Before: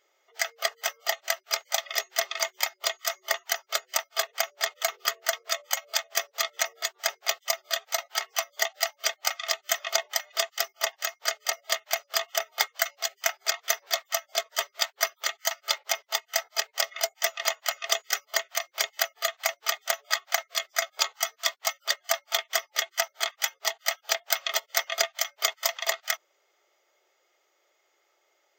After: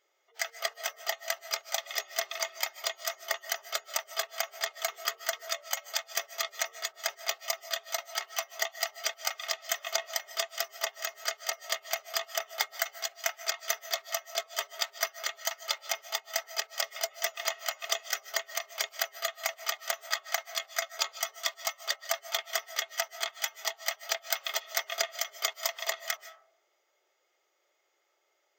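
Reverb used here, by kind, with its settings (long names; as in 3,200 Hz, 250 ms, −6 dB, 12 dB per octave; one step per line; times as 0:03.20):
comb and all-pass reverb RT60 0.82 s, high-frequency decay 0.25×, pre-delay 110 ms, DRR 13.5 dB
level −5 dB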